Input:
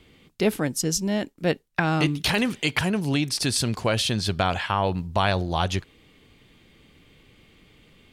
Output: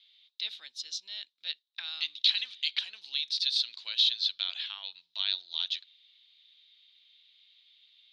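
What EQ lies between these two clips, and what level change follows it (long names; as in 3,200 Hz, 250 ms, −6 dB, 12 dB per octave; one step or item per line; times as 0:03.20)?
four-pole ladder band-pass 4,000 Hz, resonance 80%
high-frequency loss of the air 270 metres
high-shelf EQ 4,600 Hz +11.5 dB
+7.5 dB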